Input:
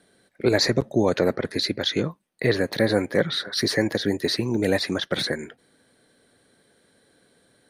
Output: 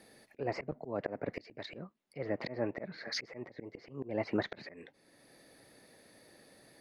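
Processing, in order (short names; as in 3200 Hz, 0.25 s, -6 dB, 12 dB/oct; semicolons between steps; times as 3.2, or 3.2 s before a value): varispeed +13%; treble ducked by the level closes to 1600 Hz, closed at -20.5 dBFS; auto swell 0.678 s; gain +1 dB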